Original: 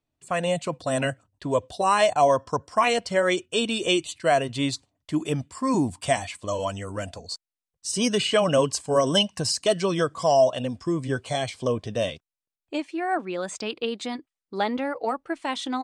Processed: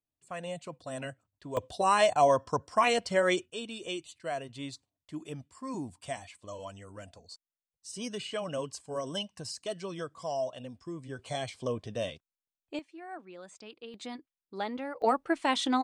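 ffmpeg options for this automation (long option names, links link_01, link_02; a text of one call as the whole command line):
ffmpeg -i in.wav -af "asetnsamples=nb_out_samples=441:pad=0,asendcmd='1.57 volume volume -4dB;3.5 volume volume -14.5dB;11.19 volume volume -8dB;12.79 volume volume -17.5dB;13.94 volume volume -9.5dB;15.02 volume volume 1dB',volume=-13.5dB" out.wav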